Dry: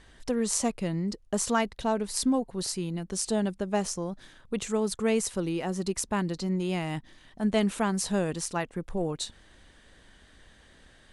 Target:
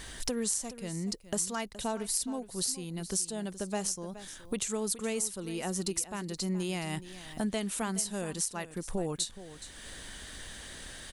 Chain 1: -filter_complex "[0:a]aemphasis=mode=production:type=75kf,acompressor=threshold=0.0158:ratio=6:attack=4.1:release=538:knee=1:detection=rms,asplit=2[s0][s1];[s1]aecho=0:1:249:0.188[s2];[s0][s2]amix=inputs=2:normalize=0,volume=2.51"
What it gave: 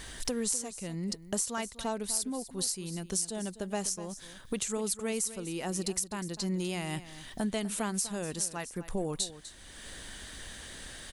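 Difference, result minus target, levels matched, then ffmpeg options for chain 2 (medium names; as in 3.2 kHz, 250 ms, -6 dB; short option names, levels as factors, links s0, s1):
echo 172 ms early
-filter_complex "[0:a]aemphasis=mode=production:type=75kf,acompressor=threshold=0.0158:ratio=6:attack=4.1:release=538:knee=1:detection=rms,asplit=2[s0][s1];[s1]aecho=0:1:421:0.188[s2];[s0][s2]amix=inputs=2:normalize=0,volume=2.51"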